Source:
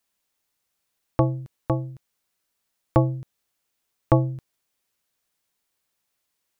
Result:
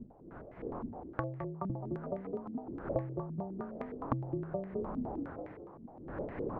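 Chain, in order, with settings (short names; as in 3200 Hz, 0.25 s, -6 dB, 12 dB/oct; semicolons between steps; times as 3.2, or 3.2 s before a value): wind noise 480 Hz -44 dBFS; in parallel at -5 dB: hard clip -15 dBFS, distortion -9 dB; on the sum: frequency-shifting echo 0.211 s, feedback 56%, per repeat +30 Hz, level -8 dB; compressor 4:1, threshold -35 dBFS, peak gain reduction 20.5 dB; stepped low-pass 9.7 Hz 240–2000 Hz; gain -4 dB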